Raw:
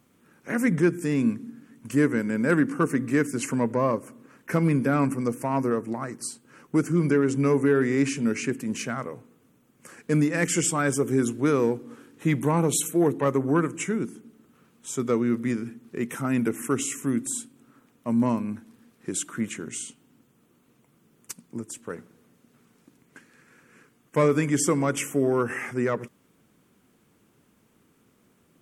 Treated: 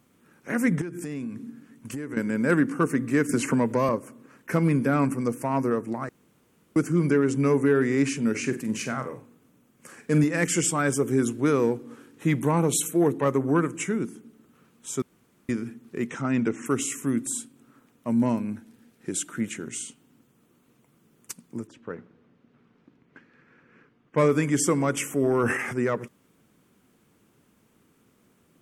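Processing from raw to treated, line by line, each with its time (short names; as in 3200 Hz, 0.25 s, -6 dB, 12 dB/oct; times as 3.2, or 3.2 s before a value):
0.81–2.17 compressor 16:1, threshold -29 dBFS
3.29–3.89 three-band squash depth 100%
6.09–6.76 room tone
8.3–10.24 flutter echo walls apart 7.9 m, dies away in 0.28 s
15.02–15.49 room tone
16.09–16.66 steep low-pass 7200 Hz
18.08–19.64 notch 1100 Hz, Q 5.4
21.67–24.18 air absorption 250 m
25.07–25.78 transient shaper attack -2 dB, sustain +9 dB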